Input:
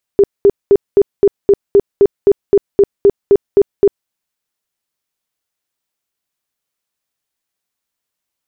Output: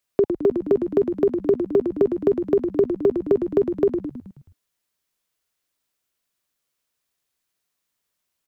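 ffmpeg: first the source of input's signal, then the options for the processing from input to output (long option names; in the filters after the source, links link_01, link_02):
-f lavfi -i "aevalsrc='0.668*sin(2*PI*401*mod(t,0.26))*lt(mod(t,0.26),19/401)':duration=3.9:sample_rate=44100"
-filter_complex "[0:a]bandreject=frequency=830:width=12,acrossover=split=100|420[link_01][link_02][link_03];[link_01]acompressor=threshold=-47dB:ratio=4[link_04];[link_02]acompressor=threshold=-21dB:ratio=4[link_05];[link_03]acompressor=threshold=-25dB:ratio=4[link_06];[link_04][link_05][link_06]amix=inputs=3:normalize=0,asplit=7[link_07][link_08][link_09][link_10][link_11][link_12][link_13];[link_08]adelay=107,afreqshift=-52,volume=-7dB[link_14];[link_09]adelay=214,afreqshift=-104,volume=-12.7dB[link_15];[link_10]adelay=321,afreqshift=-156,volume=-18.4dB[link_16];[link_11]adelay=428,afreqshift=-208,volume=-24dB[link_17];[link_12]adelay=535,afreqshift=-260,volume=-29.7dB[link_18];[link_13]adelay=642,afreqshift=-312,volume=-35.4dB[link_19];[link_07][link_14][link_15][link_16][link_17][link_18][link_19]amix=inputs=7:normalize=0"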